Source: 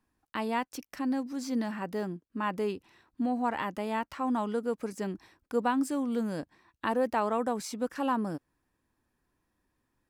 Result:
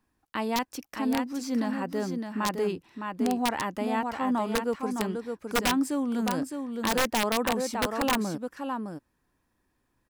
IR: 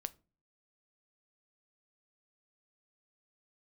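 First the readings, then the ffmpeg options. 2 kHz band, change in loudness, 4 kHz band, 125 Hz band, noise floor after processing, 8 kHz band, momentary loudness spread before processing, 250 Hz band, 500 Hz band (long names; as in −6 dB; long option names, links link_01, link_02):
+6.5 dB, +3.0 dB, +12.0 dB, +4.0 dB, −75 dBFS, +10.5 dB, 9 LU, +3.5 dB, +2.5 dB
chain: -af "aecho=1:1:611:0.501,aeval=exprs='(mod(10*val(0)+1,2)-1)/10':channel_layout=same,volume=2.5dB"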